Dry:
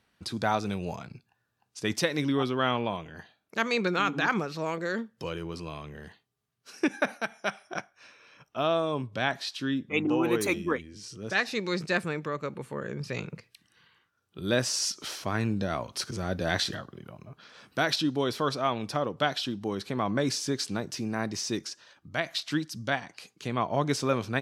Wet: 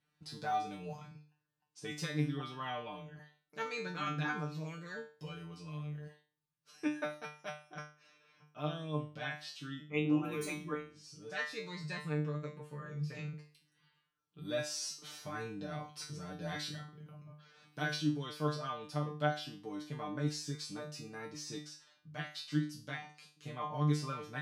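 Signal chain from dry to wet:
parametric band 170 Hz +7.5 dB 0.57 octaves
tuned comb filter 150 Hz, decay 0.37 s, harmonics all, mix 100%
level +1 dB

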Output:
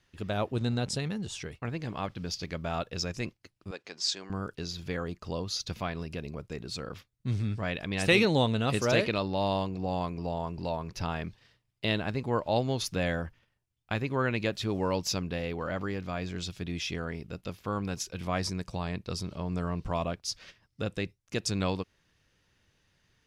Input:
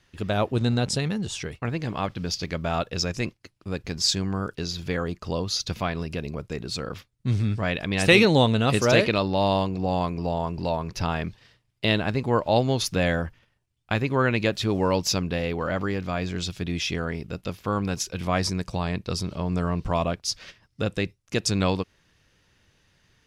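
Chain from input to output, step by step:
0:03.71–0:04.30: band-pass filter 470–7,300 Hz
level −6.5 dB

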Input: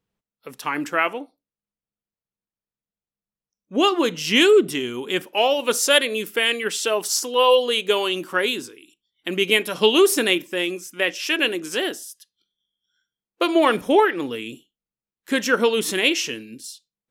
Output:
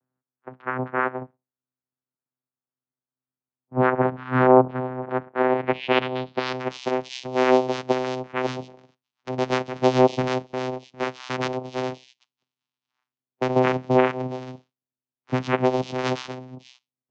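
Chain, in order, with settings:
channel vocoder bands 4, saw 128 Hz
low-pass filter sweep 1,500 Hz → 6,300 Hz, 0:05.33–0:06.70
three-way crossover with the lows and the highs turned down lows −16 dB, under 160 Hz, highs −17 dB, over 4,300 Hz
level −1 dB

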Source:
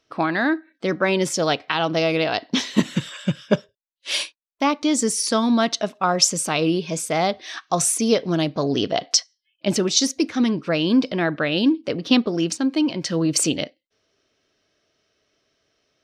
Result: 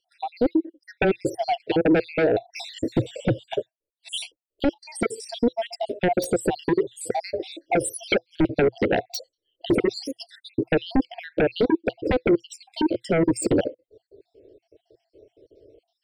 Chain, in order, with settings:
time-frequency cells dropped at random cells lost 64%
drawn EQ curve 120 Hz 0 dB, 170 Hz −22 dB, 340 Hz +7 dB, 500 Hz +10 dB, 1,300 Hz −27 dB, 2,300 Hz −21 dB, 4,100 Hz −17 dB, 7,700 Hz −7 dB, 11,000 Hz −18 dB
downward compressor 2 to 1, threshold −31 dBFS, peak gain reduction 13.5 dB
0:04.63–0:05.69: notch comb filter 730 Hz
sine wavefolder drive 14 dB, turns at −12 dBFS
phaser with its sweep stopped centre 2,800 Hz, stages 4

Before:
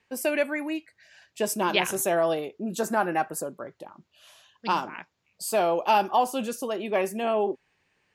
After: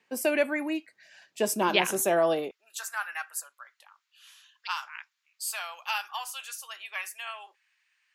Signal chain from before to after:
high-pass filter 160 Hz 24 dB per octave, from 0:02.51 1,300 Hz

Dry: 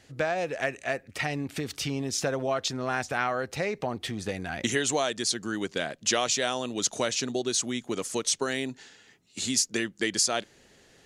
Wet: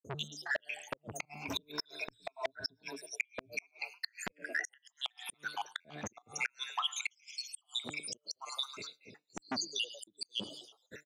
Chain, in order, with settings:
time-frequency cells dropped at random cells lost 84%
high-pass filter 85 Hz 24 dB per octave
hum removal 149 Hz, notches 34
echo with shifted repeats 106 ms, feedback 58%, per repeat +78 Hz, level −21.5 dB
downward expander −58 dBFS
downward compressor 8 to 1, threshold −44 dBFS, peak gain reduction 17 dB
0:01.45–0:03.79: EQ curve with evenly spaced ripples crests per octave 1.6, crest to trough 16 dB
gate with flip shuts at −35 dBFS, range −36 dB
parametric band 9,000 Hz −12 dB 0.97 octaves
saturating transformer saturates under 2,300 Hz
level +16 dB

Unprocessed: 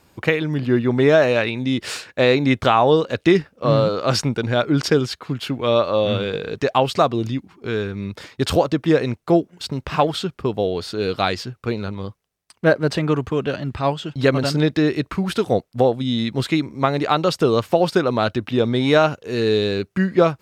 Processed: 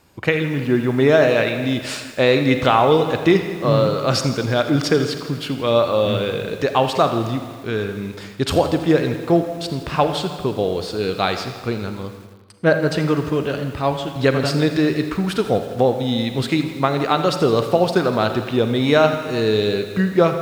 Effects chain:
convolution reverb RT60 1.5 s, pre-delay 35 ms, DRR 8 dB
feedback echo at a low word length 82 ms, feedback 80%, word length 6 bits, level −15 dB

